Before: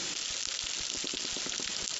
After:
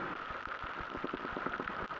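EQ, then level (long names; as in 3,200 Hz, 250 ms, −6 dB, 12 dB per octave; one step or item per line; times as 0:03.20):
transistor ladder low-pass 1,500 Hz, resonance 55%
+13.0 dB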